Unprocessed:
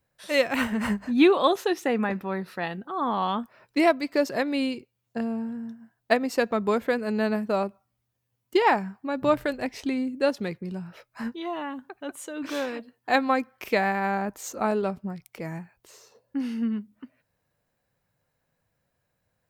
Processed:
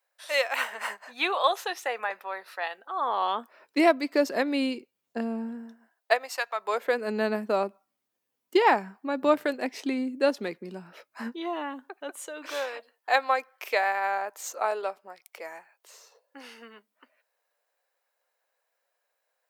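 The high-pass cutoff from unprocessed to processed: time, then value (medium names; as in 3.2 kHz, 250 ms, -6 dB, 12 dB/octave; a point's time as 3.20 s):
high-pass 24 dB/octave
2.73 s 590 Hz
3.95 s 220 Hz
5.47 s 220 Hz
6.48 s 860 Hz
7.09 s 240 Hz
11.43 s 240 Hz
12.69 s 510 Hz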